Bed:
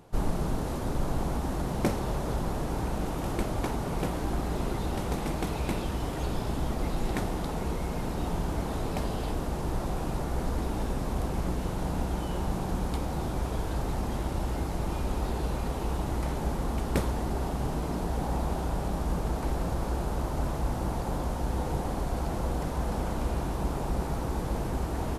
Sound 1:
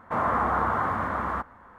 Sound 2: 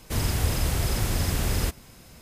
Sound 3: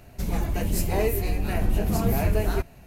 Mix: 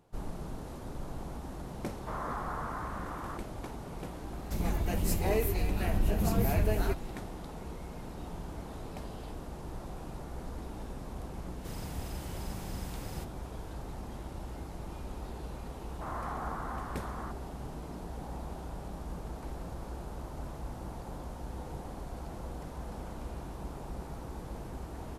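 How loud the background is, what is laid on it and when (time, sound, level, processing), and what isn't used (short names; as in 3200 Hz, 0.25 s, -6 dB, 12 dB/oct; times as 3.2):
bed -11 dB
1.96 add 1 -13.5 dB
4.32 add 3 -5 dB
11.54 add 2 -17.5 dB
15.9 add 1 -15.5 dB + bell 760 Hz +5 dB 0.26 oct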